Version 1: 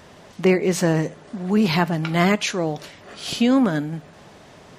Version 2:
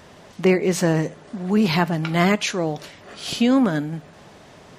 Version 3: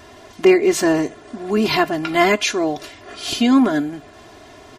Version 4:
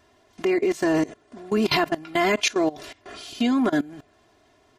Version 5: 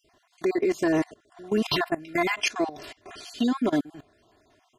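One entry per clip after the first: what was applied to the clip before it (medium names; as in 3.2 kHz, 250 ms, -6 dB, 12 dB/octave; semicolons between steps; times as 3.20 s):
no audible change
comb 2.9 ms, depth 85%; trim +1.5 dB
level held to a coarse grid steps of 20 dB
random holes in the spectrogram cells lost 32%; trim -1.5 dB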